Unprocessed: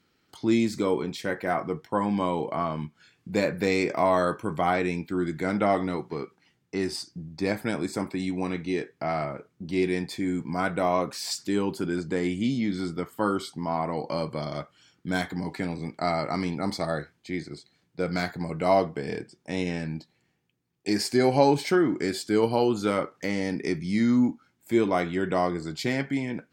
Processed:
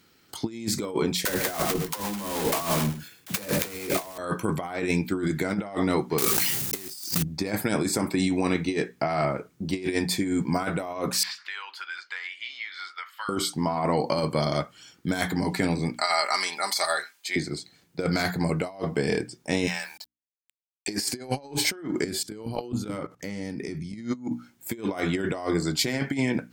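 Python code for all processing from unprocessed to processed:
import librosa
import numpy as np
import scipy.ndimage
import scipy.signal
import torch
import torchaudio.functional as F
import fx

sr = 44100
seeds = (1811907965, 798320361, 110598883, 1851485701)

y = fx.chain(x, sr, fx.block_float(bits=3),
    fx.dispersion(late='lows', ms=52.0, hz=390.0),
    fx.echo_single(ms=104, db=-12.0), at=(1.25, 4.18))
y = fx.chain(y, sr, fx.block_float(bits=3),
    fx.high_shelf(hz=3500.0, db=10.5),
    fx.sustainer(db_per_s=27.0), at=(6.18, 7.24))
y = fx.chain(y, sr, fx.highpass(hz=1300.0, slope=24),
    fx.air_absorb(metres=330.0),
    fx.band_squash(depth_pct=100), at=(11.23, 13.29))
y = fx.chain(y, sr, fx.highpass(hz=880.0, slope=12),
    fx.tilt_eq(slope=1.5),
    fx.comb(ms=5.0, depth=0.51), at=(15.96, 17.36))
y = fx.chain(y, sr, fx.highpass(hz=800.0, slope=24),
    fx.sample_gate(floor_db=-58.0), at=(19.67, 20.88))
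y = fx.chain(y, sr, fx.low_shelf(hz=220.0, db=10.0),
    fx.level_steps(step_db=20), at=(22.04, 24.15))
y = fx.high_shelf(y, sr, hz=7000.0, db=11.0)
y = fx.hum_notches(y, sr, base_hz=60, count=5)
y = fx.over_compress(y, sr, threshold_db=-29.0, ratio=-0.5)
y = F.gain(torch.from_numpy(y), 3.0).numpy()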